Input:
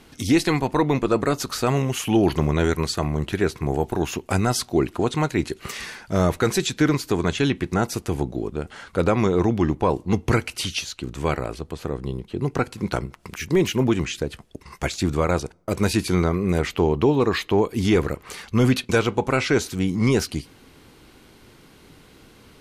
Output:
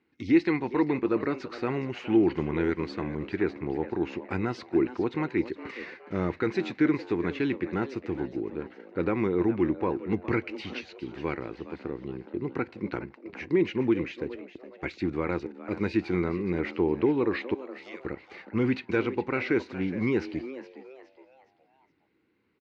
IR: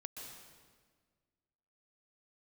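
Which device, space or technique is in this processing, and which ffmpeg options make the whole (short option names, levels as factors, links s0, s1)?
frequency-shifting delay pedal into a guitar cabinet: -filter_complex "[0:a]agate=range=0.178:threshold=0.0141:ratio=16:detection=peak,asettb=1/sr,asplit=3[s0][s1][s2];[s0]atrim=end=17.544[s3];[s1]atrim=start=17.54:end=18.05,asetpts=PTS-STARTPTS,afade=t=in:d=0.004:c=qsin,afade=t=out:st=0.506:d=0.004:c=qsin,aderivative[s4];[s2]atrim=start=18.046[s5];[s3][s4]acrossfade=d=0.004:c1=hsin:c2=qsin[s6];[s6][s5]acrossfade=d=0.004:c1=qsin:c2=hsin,asplit=5[s7][s8][s9][s10][s11];[s8]adelay=416,afreqshift=130,volume=0.2[s12];[s9]adelay=832,afreqshift=260,volume=0.0822[s13];[s10]adelay=1248,afreqshift=390,volume=0.0335[s14];[s11]adelay=1664,afreqshift=520,volume=0.0138[s15];[s7][s12][s13][s14][s15]amix=inputs=5:normalize=0,highpass=110,equalizer=f=140:t=q:w=4:g=-5,equalizer=f=330:t=q:w=4:g=7,equalizer=f=650:t=q:w=4:g=-9,equalizer=f=1200:t=q:w=4:g=-3,equalizer=f=2100:t=q:w=4:g=5,equalizer=f=3300:t=q:w=4:g=-9,lowpass=f=3600:w=0.5412,lowpass=f=3600:w=1.3066,volume=0.422"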